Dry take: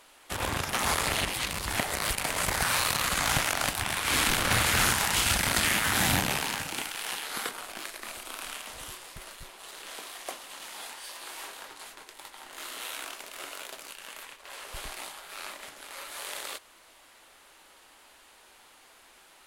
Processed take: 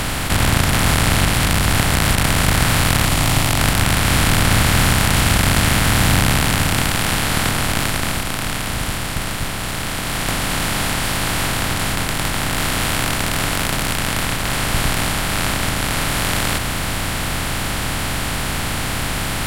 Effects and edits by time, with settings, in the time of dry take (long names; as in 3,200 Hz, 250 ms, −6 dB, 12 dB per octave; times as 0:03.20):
0:03.05–0:03.59: phaser with its sweep stopped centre 310 Hz, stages 8
0:07.76–0:10.51: duck −18.5 dB, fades 0.48 s
whole clip: compressor on every frequency bin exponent 0.2; low-shelf EQ 250 Hz +11 dB; notch filter 6,400 Hz, Q 19; level +1 dB